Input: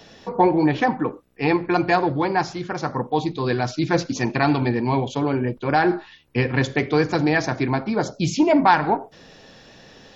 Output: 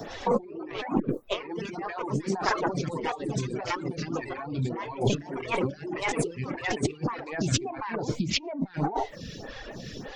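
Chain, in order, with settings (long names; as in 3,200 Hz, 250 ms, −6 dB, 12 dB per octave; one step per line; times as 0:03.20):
spectral magnitudes quantised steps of 15 dB
delay with pitch and tempo change per echo 105 ms, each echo +2 semitones, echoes 3
compressor whose output falls as the input rises −30 dBFS, ratio −1
0:06.37–0:08.45: parametric band 2,600 Hz +4 dB 0.88 octaves
reverb reduction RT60 0.76 s
low-shelf EQ 130 Hz +8.5 dB
phaser with staggered stages 1.7 Hz
level +1.5 dB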